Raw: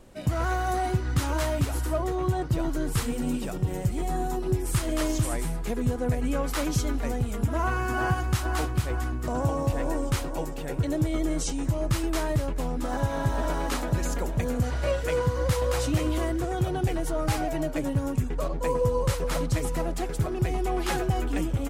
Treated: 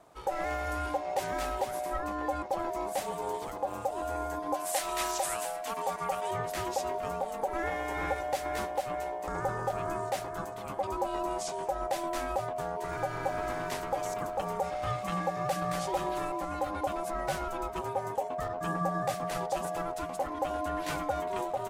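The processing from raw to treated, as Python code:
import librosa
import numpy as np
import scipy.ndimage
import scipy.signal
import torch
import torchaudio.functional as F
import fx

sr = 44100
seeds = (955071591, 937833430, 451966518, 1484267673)

y = x * np.sin(2.0 * np.pi * 670.0 * np.arange(len(x)) / sr)
y = fx.tilt_shelf(y, sr, db=-7.5, hz=760.0, at=(4.54, 6.31))
y = F.gain(torch.from_numpy(y), -4.0).numpy()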